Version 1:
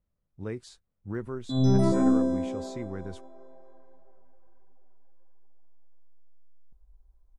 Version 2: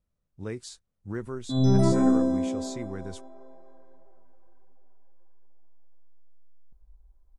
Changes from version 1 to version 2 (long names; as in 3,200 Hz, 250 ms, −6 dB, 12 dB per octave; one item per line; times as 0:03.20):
speech: add parametric band 7,900 Hz +9.5 dB 2 octaves
reverb: on, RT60 0.75 s